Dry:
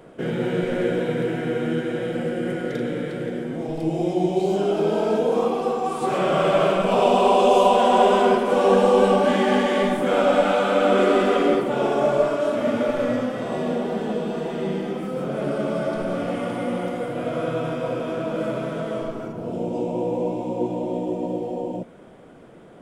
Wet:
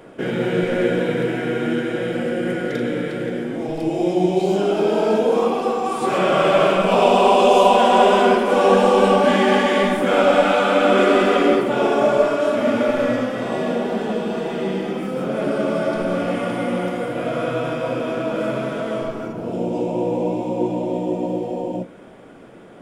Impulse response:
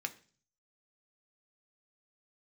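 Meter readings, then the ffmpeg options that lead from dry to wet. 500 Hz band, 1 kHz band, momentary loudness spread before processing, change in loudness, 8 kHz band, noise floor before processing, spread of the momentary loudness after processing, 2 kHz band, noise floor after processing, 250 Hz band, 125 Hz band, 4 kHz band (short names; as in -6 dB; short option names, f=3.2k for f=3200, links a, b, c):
+3.0 dB, +3.5 dB, 11 LU, +3.0 dB, +4.0 dB, -45 dBFS, 11 LU, +5.5 dB, -37 dBFS, +3.0 dB, +2.0 dB, +5.0 dB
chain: -filter_complex "[0:a]asplit=2[a][b];[1:a]atrim=start_sample=2205[c];[b][c]afir=irnorm=-1:irlink=0,volume=-2dB[d];[a][d]amix=inputs=2:normalize=0"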